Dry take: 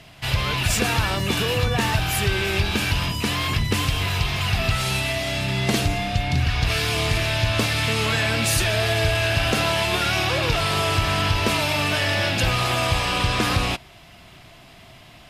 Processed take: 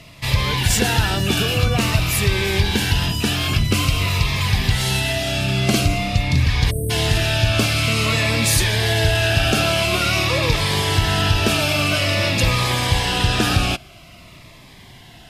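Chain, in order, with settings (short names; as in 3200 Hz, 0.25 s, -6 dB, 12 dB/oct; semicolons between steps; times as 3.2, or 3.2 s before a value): spectral delete 6.7–6.9, 680–8000 Hz; cascading phaser falling 0.49 Hz; gain +4.5 dB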